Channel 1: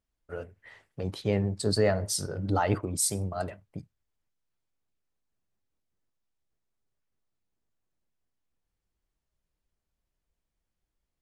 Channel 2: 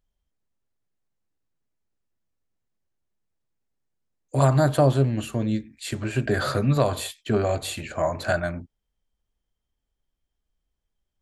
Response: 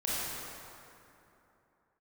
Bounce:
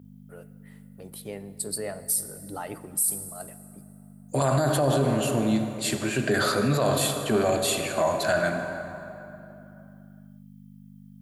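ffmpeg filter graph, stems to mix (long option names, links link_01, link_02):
-filter_complex "[0:a]aexciter=amount=10.5:drive=5.4:freq=8800,volume=-9.5dB,asplit=2[link_01][link_02];[link_02]volume=-20.5dB[link_03];[1:a]aeval=exprs='val(0)+0.01*(sin(2*PI*50*n/s)+sin(2*PI*2*50*n/s)/2+sin(2*PI*3*50*n/s)/3+sin(2*PI*4*50*n/s)/4+sin(2*PI*5*50*n/s)/5)':channel_layout=same,volume=0.5dB,asplit=2[link_04][link_05];[link_05]volume=-11.5dB[link_06];[2:a]atrim=start_sample=2205[link_07];[link_03][link_06]amix=inputs=2:normalize=0[link_08];[link_08][link_07]afir=irnorm=-1:irlink=0[link_09];[link_01][link_04][link_09]amix=inputs=3:normalize=0,highpass=170,highshelf=frequency=5400:gain=7,alimiter=limit=-14.5dB:level=0:latency=1:release=15"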